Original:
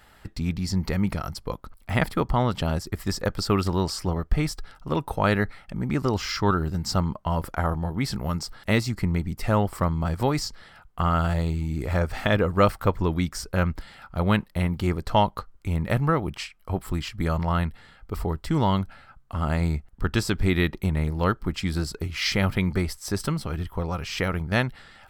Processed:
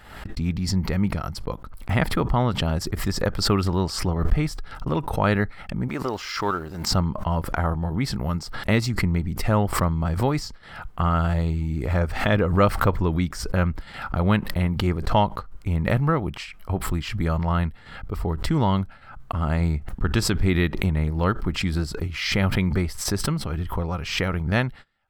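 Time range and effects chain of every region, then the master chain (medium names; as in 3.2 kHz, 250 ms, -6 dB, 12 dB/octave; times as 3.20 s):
5.88–6.91 s: companding laws mixed up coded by A + tone controls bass -13 dB, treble +1 dB
whole clip: tone controls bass +2 dB, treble -5 dB; gate -39 dBFS, range -24 dB; swell ahead of each attack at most 69 dB/s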